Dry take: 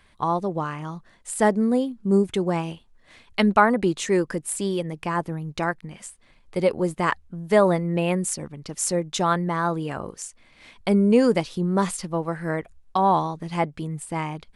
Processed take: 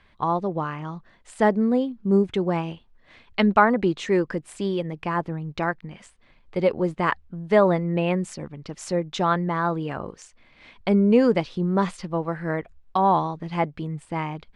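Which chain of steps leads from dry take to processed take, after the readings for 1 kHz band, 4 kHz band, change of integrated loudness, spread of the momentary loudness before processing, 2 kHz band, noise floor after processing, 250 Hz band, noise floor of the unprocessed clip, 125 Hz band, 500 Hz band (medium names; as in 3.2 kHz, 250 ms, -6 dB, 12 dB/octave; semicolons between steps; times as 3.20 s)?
0.0 dB, -2.5 dB, 0.0 dB, 14 LU, 0.0 dB, -58 dBFS, 0.0 dB, -57 dBFS, 0.0 dB, 0.0 dB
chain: low-pass 3.9 kHz 12 dB/octave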